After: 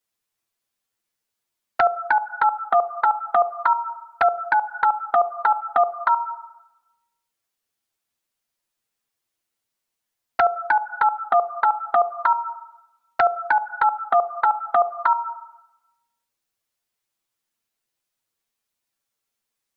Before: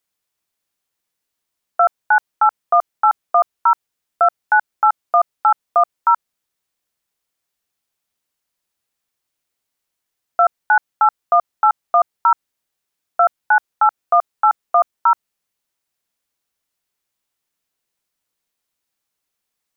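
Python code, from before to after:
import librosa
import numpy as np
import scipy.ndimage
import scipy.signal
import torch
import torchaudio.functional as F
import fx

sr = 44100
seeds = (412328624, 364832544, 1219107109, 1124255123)

y = fx.rev_schroeder(x, sr, rt60_s=1.0, comb_ms=33, drr_db=10.0)
y = fx.env_flanger(y, sr, rest_ms=8.8, full_db=-11.0)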